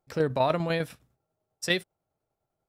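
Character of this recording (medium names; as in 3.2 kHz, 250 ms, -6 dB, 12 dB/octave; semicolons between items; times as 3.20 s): tremolo saw down 10 Hz, depth 50%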